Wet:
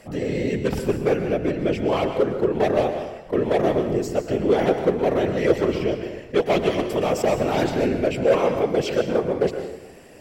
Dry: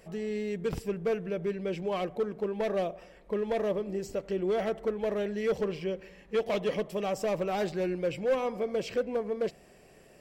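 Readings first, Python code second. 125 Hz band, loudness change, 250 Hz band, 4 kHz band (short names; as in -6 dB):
+12.5 dB, +9.5 dB, +11.0 dB, +10.0 dB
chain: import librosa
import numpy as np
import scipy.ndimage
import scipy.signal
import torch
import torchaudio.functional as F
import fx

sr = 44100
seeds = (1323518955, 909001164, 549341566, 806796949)

y = fx.whisperise(x, sr, seeds[0])
y = fx.rev_plate(y, sr, seeds[1], rt60_s=0.94, hf_ratio=0.8, predelay_ms=105, drr_db=7.0)
y = fx.attack_slew(y, sr, db_per_s=450.0)
y = y * librosa.db_to_amplitude(9.0)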